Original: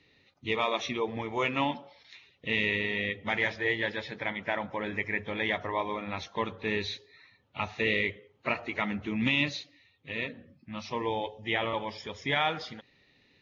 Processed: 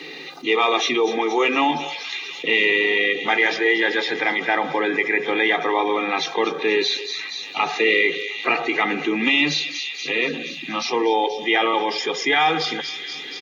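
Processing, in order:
Chebyshev high-pass filter 150 Hz, order 10
comb filter 2.5 ms, depth 85%
on a send: delay with a high-pass on its return 238 ms, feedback 62%, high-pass 4,900 Hz, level −8 dB
on the sum: envelope flattener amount 50%
level +6.5 dB

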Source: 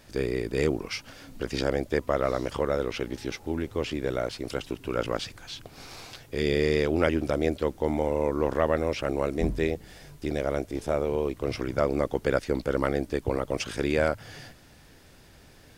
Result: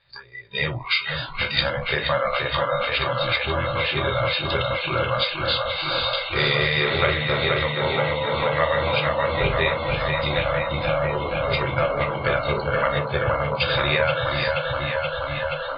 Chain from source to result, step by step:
Chebyshev low-pass filter 4,800 Hz, order 10
high-shelf EQ 2,300 Hz +11.5 dB
hollow resonant body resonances 520/3,700 Hz, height 17 dB, ringing for 50 ms
downward compressor 2 to 1, threshold −36 dBFS, peak gain reduction 15 dB
on a send at −3 dB: convolution reverb RT60 0.45 s, pre-delay 3 ms
on the sum: automatic gain control gain up to 5 dB
delay with a low-pass on its return 477 ms, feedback 85%, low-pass 3,400 Hz, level −3.5 dB
noise reduction from a noise print of the clip's start 22 dB
graphic EQ with 10 bands 125 Hz +11 dB, 250 Hz −11 dB, 500 Hz −10 dB, 1,000 Hz +8 dB, 2,000 Hz +7 dB
level +3.5 dB

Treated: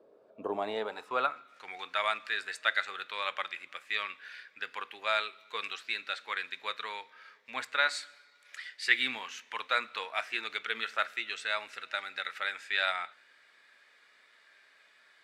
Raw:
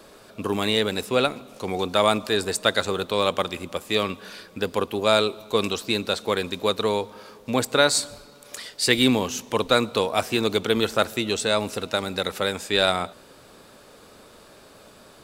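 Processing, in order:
band-pass filter sweep 470 Hz → 1,900 Hz, 0:00.13–0:01.75
noise reduction from a noise print of the clip's start 7 dB
0:07.88–0:08.64: high-pass filter 270 Hz 6 dB per octave
on a send: convolution reverb RT60 0.40 s, pre-delay 3 ms, DRR 15 dB

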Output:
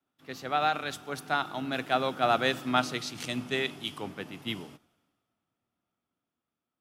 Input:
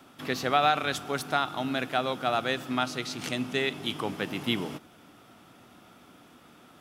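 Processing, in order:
source passing by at 0:02.59, 8 m/s, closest 10 metres
multiband upward and downward expander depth 70%

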